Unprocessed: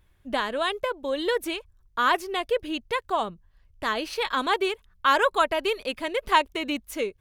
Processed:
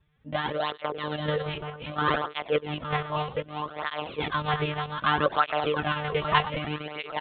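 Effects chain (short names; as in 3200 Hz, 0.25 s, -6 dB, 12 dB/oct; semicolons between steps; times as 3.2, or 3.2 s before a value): regenerating reverse delay 0.424 s, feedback 56%, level -4.5 dB; echo 0.109 s -16.5 dB; monotone LPC vocoder at 8 kHz 150 Hz; tape flanging out of phase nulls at 0.64 Hz, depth 4.1 ms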